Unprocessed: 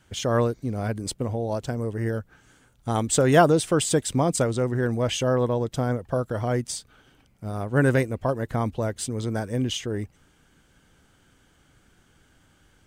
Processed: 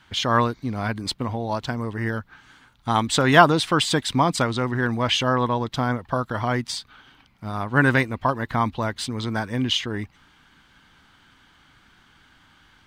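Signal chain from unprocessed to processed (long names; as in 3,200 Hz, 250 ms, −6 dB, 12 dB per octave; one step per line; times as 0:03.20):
octave-band graphic EQ 250/500/1,000/2,000/4,000/8,000 Hz +4/−6/+11/+6/+11/−6 dB
level −1 dB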